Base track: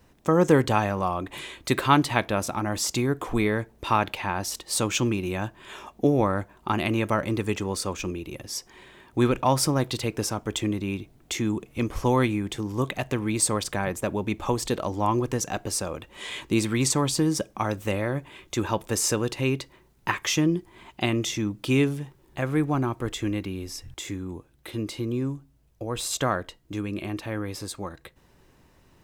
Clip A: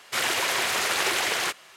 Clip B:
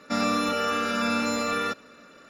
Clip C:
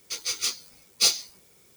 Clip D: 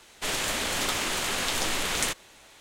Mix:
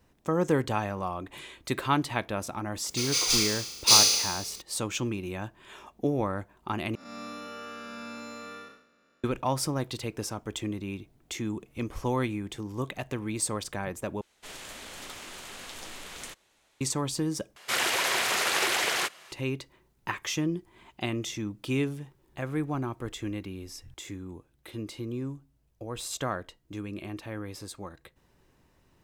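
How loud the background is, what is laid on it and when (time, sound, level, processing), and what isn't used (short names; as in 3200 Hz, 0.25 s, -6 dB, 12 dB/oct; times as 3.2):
base track -6.5 dB
2.86 add C + flutter echo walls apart 6.1 m, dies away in 1.2 s
6.95 replace with B -14.5 dB + time blur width 0.214 s
14.21 replace with D -14.5 dB
17.56 replace with A -1.5 dB + HPF 89 Hz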